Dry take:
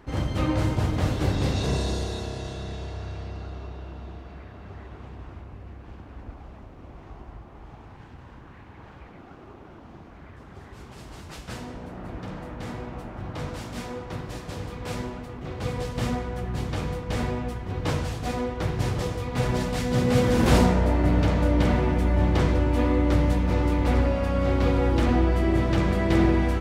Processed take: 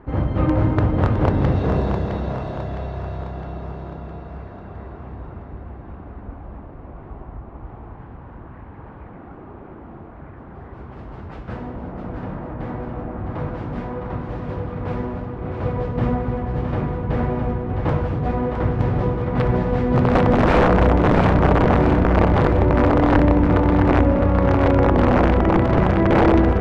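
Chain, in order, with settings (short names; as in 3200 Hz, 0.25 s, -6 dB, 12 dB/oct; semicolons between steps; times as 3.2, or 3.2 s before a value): wrapped overs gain 13.5 dB; LPF 1400 Hz 12 dB/oct; split-band echo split 470 Hz, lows 0.269 s, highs 0.661 s, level -6 dB; gain +6 dB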